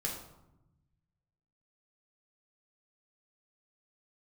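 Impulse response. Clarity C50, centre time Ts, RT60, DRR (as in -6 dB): 4.5 dB, 37 ms, 0.90 s, -3.0 dB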